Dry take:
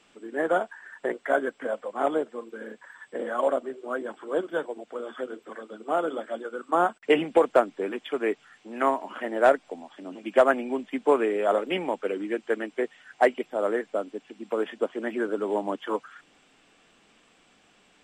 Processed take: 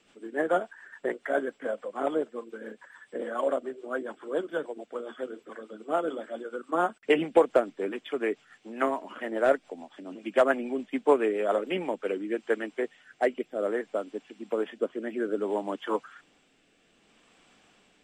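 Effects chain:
rotating-speaker cabinet horn 7 Hz, later 0.6 Hz, at 0:11.57

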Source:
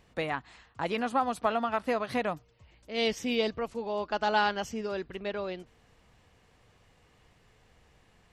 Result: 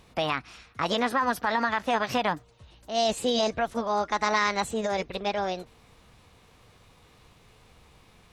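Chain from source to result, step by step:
brickwall limiter −22 dBFS, peak gain reduction 8 dB
formants moved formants +5 semitones
level +6 dB

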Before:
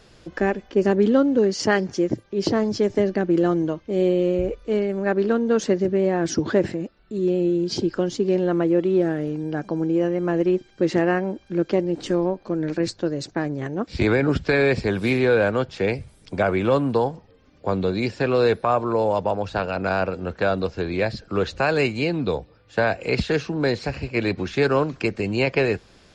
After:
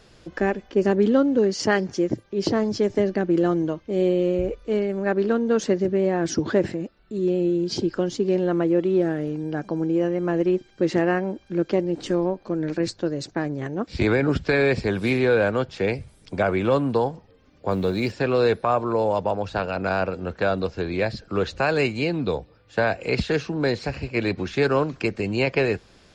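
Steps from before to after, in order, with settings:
0:17.71–0:18.12: mu-law and A-law mismatch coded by mu
level −1 dB

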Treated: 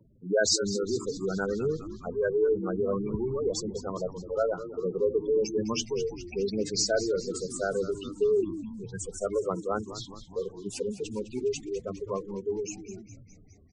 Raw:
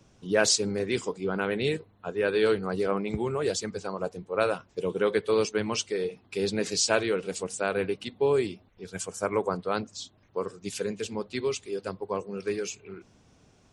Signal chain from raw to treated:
gate on every frequency bin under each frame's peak −10 dB strong
on a send: echo with shifted repeats 206 ms, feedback 63%, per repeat −100 Hz, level −13 dB

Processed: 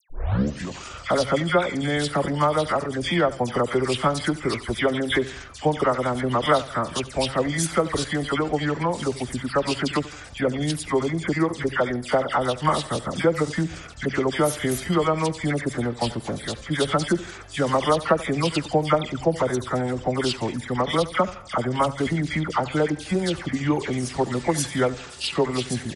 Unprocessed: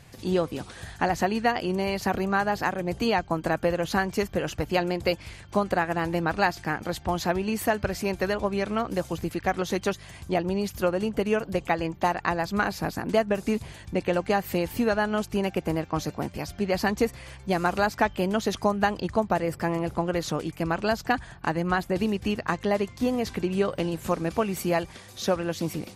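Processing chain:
turntable start at the beginning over 0.63 s
upward compression, threshold −43 dBFS
spectral tilt +1.5 dB per octave
mains-hum notches 60/120/180 Hz
all-pass dispersion lows, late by 95 ms, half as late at 2,600 Hz
on a send: repeating echo 82 ms, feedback 41%, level −17.5 dB
on the sum: pitch shifter −5 semitones
level +4.5 dB

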